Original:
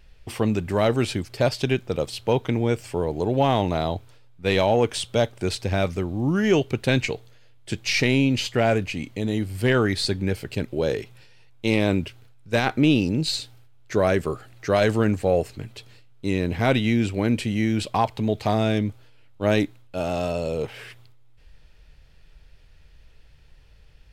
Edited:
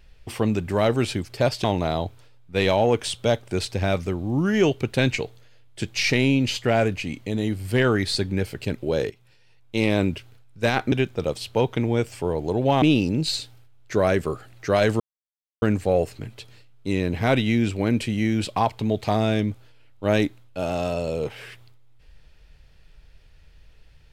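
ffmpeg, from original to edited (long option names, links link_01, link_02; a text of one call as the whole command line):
ffmpeg -i in.wav -filter_complex "[0:a]asplit=6[link_01][link_02][link_03][link_04][link_05][link_06];[link_01]atrim=end=1.642[link_07];[link_02]atrim=start=3.538:end=11,asetpts=PTS-STARTPTS,afade=type=out:start_time=7.458:duration=0.004:curve=hsin:silence=0.211349[link_08];[link_03]atrim=start=11:end=12.822,asetpts=PTS-STARTPTS,afade=type=in:duration=0.8:silence=0.211349[link_09];[link_04]atrim=start=1.638:end=3.542[link_10];[link_05]atrim=start=12.818:end=15,asetpts=PTS-STARTPTS,afade=type=out:start_time=2.178:duration=0.004:curve=hsin,apad=pad_dur=0.62[link_11];[link_06]atrim=start=15,asetpts=PTS-STARTPTS,afade=type=in:duration=0.004:curve=hsin[link_12];[link_08][link_09]concat=n=2:v=0:a=1[link_13];[link_07][link_13]acrossfade=duration=0.004:curve1=hsin:curve2=hsin[link_14];[link_14][link_10]acrossfade=duration=0.004:curve1=hsin:curve2=hsin[link_15];[link_11][link_12]concat=n=2:v=0:a=1[link_16];[link_15][link_16]acrossfade=duration=0.004:curve1=hsin:curve2=hsin" out.wav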